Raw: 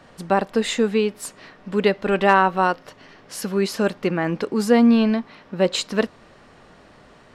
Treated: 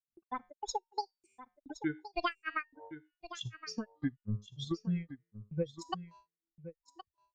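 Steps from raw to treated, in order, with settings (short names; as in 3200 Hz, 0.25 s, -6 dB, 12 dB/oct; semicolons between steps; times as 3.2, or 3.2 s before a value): per-bin expansion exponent 3; resonator 81 Hz, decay 0.79 s, harmonics all, mix 50%; grains 0.235 s, grains 3.3/s, spray 29 ms, pitch spread up and down by 12 st; transient shaper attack +8 dB, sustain -3 dB; gate with hold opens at -59 dBFS; LPF 5400 Hz 24 dB/oct; low shelf 63 Hz +12 dB; resonator 920 Hz, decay 0.25 s, mix 30%; compressor 2.5:1, threshold -45 dBFS, peak gain reduction 16 dB; echo 1.068 s -13.5 dB; gain +7.5 dB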